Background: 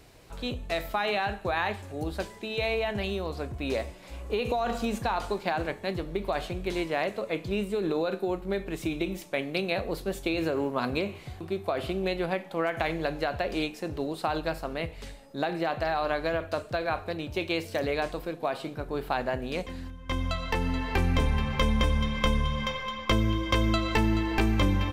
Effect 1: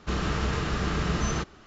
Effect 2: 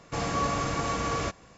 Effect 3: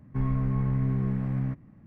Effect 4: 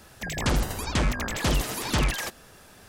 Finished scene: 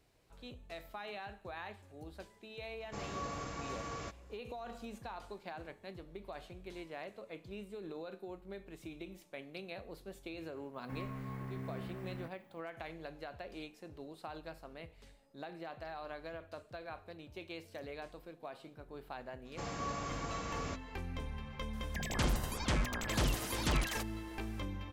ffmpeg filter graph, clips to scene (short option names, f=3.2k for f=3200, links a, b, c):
-filter_complex "[2:a]asplit=2[a][b];[0:a]volume=-17dB[c];[3:a]aemphasis=mode=production:type=riaa[d];[a]atrim=end=1.57,asetpts=PTS-STARTPTS,volume=-13.5dB,afade=t=in:d=0.004:c=hsin,afade=t=out:st=1.566:d=0.004:c=hsin,adelay=2800[e];[d]atrim=end=1.86,asetpts=PTS-STARTPTS,volume=-7dB,afade=t=in:d=0.004:c=hsin,afade=t=out:st=1.856:d=0.004:c=hsin,adelay=473634S[f];[b]atrim=end=1.57,asetpts=PTS-STARTPTS,volume=-11.5dB,afade=t=in:d=0.004:c=hsin,afade=t=out:st=1.566:d=0.004:c=hsin,adelay=19450[g];[4:a]atrim=end=2.88,asetpts=PTS-STARTPTS,volume=-8.5dB,afade=t=in:d=0.004:c=hsin,afade=t=out:st=2.876:d=0.004:c=hsin,adelay=21730[h];[c][e][f][g][h]amix=inputs=5:normalize=0"